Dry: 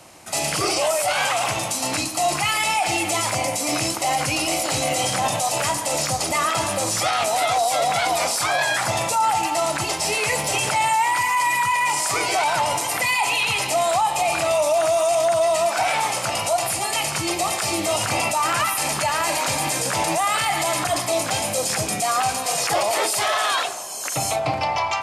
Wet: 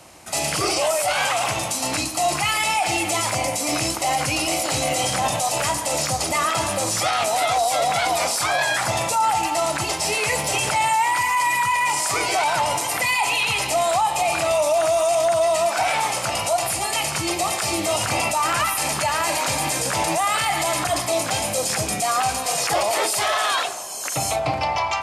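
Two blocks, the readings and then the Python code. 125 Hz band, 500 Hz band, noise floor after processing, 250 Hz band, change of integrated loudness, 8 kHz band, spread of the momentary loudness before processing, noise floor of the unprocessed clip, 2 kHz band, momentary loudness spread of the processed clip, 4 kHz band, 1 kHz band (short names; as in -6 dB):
+0.5 dB, 0.0 dB, -28 dBFS, 0.0 dB, 0.0 dB, 0.0 dB, 3 LU, -28 dBFS, 0.0 dB, 3 LU, 0.0 dB, 0.0 dB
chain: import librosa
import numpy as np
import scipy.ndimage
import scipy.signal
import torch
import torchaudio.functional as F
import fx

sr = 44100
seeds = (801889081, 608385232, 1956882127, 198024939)

y = fx.peak_eq(x, sr, hz=65.0, db=10.5, octaves=0.28)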